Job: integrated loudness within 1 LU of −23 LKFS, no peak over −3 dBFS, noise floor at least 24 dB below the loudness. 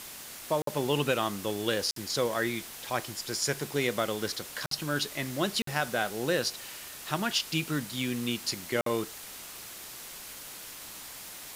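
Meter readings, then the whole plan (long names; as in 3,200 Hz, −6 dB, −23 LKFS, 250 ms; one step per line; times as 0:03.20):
number of dropouts 5; longest dropout 53 ms; background noise floor −44 dBFS; target noise floor −56 dBFS; integrated loudness −31.5 LKFS; sample peak −13.0 dBFS; target loudness −23.0 LKFS
→ repair the gap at 0:00.62/0:01.91/0:04.66/0:05.62/0:08.81, 53 ms
noise reduction from a noise print 12 dB
level +8.5 dB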